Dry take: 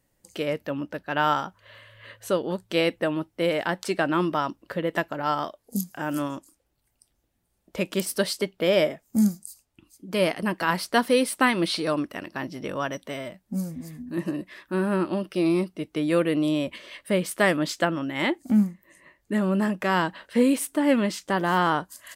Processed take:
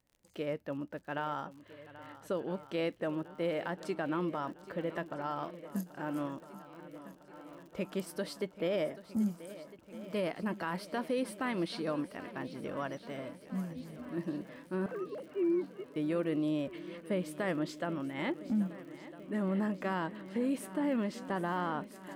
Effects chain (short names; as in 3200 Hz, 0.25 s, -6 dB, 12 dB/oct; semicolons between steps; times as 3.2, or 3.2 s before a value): 14.86–15.96 sine-wave speech; high shelf 2500 Hz -10 dB; limiter -17 dBFS, peak gain reduction 7 dB; crackle 66/s -42 dBFS; swung echo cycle 1.305 s, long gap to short 1.5:1, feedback 61%, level -16 dB; gain -8 dB